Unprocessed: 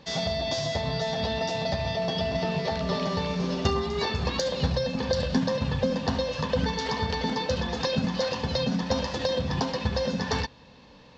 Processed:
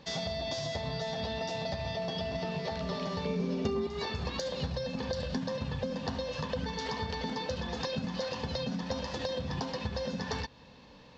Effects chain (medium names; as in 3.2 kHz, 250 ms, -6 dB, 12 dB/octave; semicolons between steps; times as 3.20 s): 3.25–3.87 s: small resonant body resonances 230/420/2300 Hz, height 14 dB; compression 2.5:1, threshold -31 dBFS, peak gain reduction 12.5 dB; trim -2.5 dB